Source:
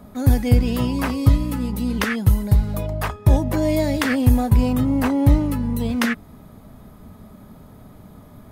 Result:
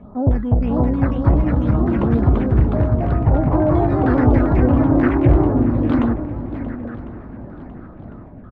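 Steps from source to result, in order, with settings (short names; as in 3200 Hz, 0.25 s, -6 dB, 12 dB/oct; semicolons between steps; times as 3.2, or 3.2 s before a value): phaser stages 8, 1.5 Hz, lowest notch 650–2700 Hz; in parallel at -4 dB: wavefolder -17.5 dBFS; on the sum: outdoor echo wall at 140 m, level -11 dB; LFO low-pass saw down 3.2 Hz 550–1600 Hz; echoes that change speed 0.56 s, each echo +2 st, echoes 3; on a send: swung echo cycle 1.051 s, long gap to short 1.5:1, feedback 44%, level -17 dB; on the sum: gain -2.5 dB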